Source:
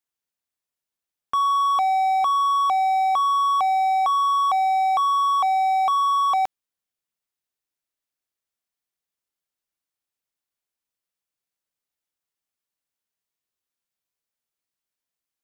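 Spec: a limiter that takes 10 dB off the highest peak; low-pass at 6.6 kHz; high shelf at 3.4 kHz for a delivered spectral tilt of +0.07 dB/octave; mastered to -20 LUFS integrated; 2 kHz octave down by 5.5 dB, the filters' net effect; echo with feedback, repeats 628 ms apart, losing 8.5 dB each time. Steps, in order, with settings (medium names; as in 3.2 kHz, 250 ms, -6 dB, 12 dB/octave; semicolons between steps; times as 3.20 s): low-pass 6.6 kHz; peaking EQ 2 kHz -4 dB; treble shelf 3.4 kHz -6.5 dB; peak limiter -27 dBFS; feedback delay 628 ms, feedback 38%, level -8.5 dB; trim +11 dB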